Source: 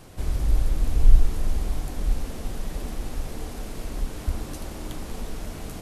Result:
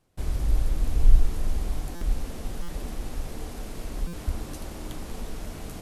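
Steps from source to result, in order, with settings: gate with hold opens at -33 dBFS; stuck buffer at 1.95/2.62/4.07, samples 256, times 10; gain -2 dB

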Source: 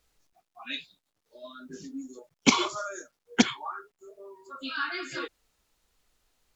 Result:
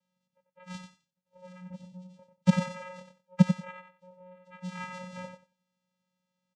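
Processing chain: tracing distortion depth 0.48 ms; 1.75–2.19 bell 400 Hz -14.5 dB 1.8 oct; vocoder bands 4, square 182 Hz; feedback echo 92 ms, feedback 17%, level -7.5 dB

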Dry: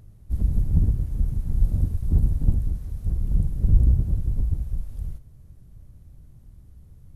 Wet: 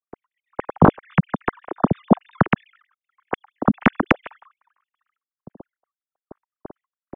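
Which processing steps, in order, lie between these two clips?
sine-wave speech; expander -51 dBFS; low-pass opened by the level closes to 560 Hz, open at -13.5 dBFS; in parallel at -3 dB: compressor, threshold -24 dBFS, peak gain reduction 19 dB; on the sum: dynamic EQ 540 Hz, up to -5 dB, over -25 dBFS, Q 0.71; soft clip -1 dBFS, distortion -20 dB

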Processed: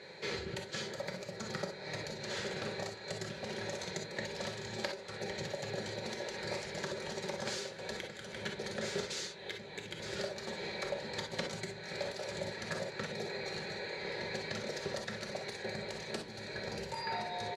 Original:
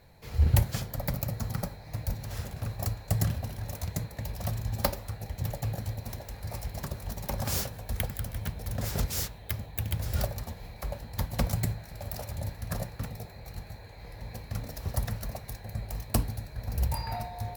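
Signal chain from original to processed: tilt +1.5 dB/oct; comb 5.3 ms, depth 37%; compressor 6:1, threshold -41 dBFS, peak gain reduction 21 dB; speaker cabinet 250–5700 Hz, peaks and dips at 260 Hz -7 dB, 400 Hz +9 dB, 730 Hz -10 dB, 1100 Hz -9 dB, 2800 Hz -5 dB, 5400 Hz -9 dB; non-linear reverb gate 80 ms rising, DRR 4 dB; gain +11.5 dB

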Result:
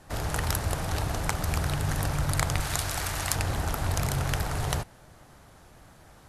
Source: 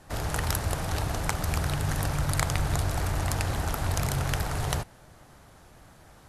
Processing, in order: 2.6–3.36 tilt shelf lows -6.5 dB

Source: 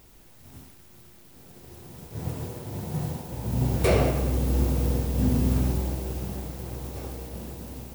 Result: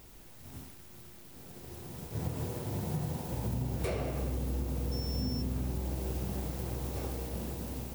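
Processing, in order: compressor 12:1, threshold -30 dBFS, peak gain reduction 14 dB; 4.91–5.41 whine 5400 Hz -42 dBFS

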